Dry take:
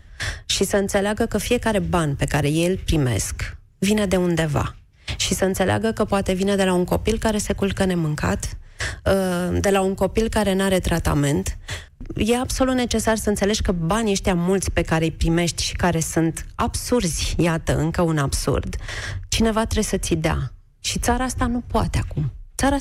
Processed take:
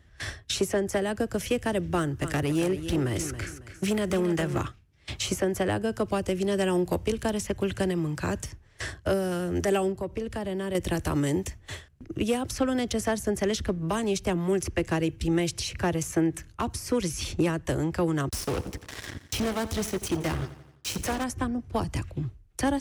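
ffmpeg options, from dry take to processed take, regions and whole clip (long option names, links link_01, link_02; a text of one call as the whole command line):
ffmpeg -i in.wav -filter_complex "[0:a]asettb=1/sr,asplit=3[link_01][link_02][link_03];[link_01]atrim=end=1.964[link_04];[link_02]atrim=start=1.96:end=4.63,asetpts=PTS-STARTPTS,afade=type=in:duration=0.004:curve=qsin,afade=type=out:start_time=2.666:duration=0.004:curve=qsin,aecho=1:1:275|550|825:0.282|0.0874|0.0271,atrim=end_sample=117747,asoftclip=type=hard:threshold=-14dB,equalizer=frequency=1400:width=3:gain=4.5[link_05];[link_03]atrim=start=4.626[link_06];[link_04][link_05]acrossfade=duration=0.004:curve1=hsin:curve2=qsin[link_07];[link_07][link_06]acrossfade=duration=0.004:curve1=qsin:curve2=hsin,asettb=1/sr,asplit=3[link_08][link_09][link_10];[link_08]atrim=end=9.924[link_11];[link_09]atrim=start=9.92:end=10.75,asetpts=PTS-STARTPTS,afade=type=in:duration=0.004:curve=qsin,afade=type=out:start_time=0.826:duration=0.004:curve=qsin,highshelf=frequency=3500:gain=-8,acompressor=threshold=-24dB:ratio=2:attack=3.2:release=140:knee=1:detection=peak[link_12];[link_10]atrim=start=10.746[link_13];[link_11][link_12]acrossfade=duration=0.004:curve1=hsin:curve2=qsin[link_14];[link_14][link_13]acrossfade=duration=0.004:curve1=qsin:curve2=hsin,asettb=1/sr,asplit=3[link_15][link_16][link_17];[link_15]atrim=end=18.294[link_18];[link_16]atrim=start=18.29:end=21.24,asetpts=PTS-STARTPTS,afade=type=in:duration=0.004:curve=qsin,afade=type=out:start_time=2.946:duration=0.004:curve=qsin,asoftclip=type=hard:threshold=-19.5dB,acrusher=bits=3:mix=0:aa=0.5,aecho=1:1:86|172|258|344|430:0.178|0.0978|0.0538|0.0296|0.0163,atrim=end_sample=130095[link_19];[link_17]atrim=start=21.236[link_20];[link_18][link_19]acrossfade=duration=0.004:curve1=hsin:curve2=qsin[link_21];[link_21][link_20]acrossfade=duration=0.004:curve1=qsin:curve2=hsin,highpass=58,equalizer=frequency=330:width=2.1:gain=5.5,volume=-8.5dB" out.wav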